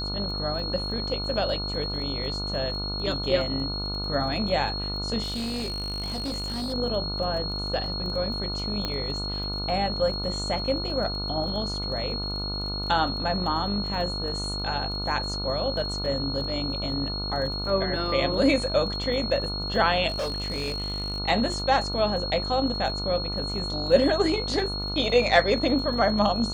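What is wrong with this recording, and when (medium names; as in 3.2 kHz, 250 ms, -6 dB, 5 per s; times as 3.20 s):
buzz 50 Hz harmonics 29 -33 dBFS
crackle 17 per s -35 dBFS
whine 4.3 kHz -31 dBFS
5.22–6.74 s: clipped -27 dBFS
8.85 s: pop -14 dBFS
20.08–21.20 s: clipped -25 dBFS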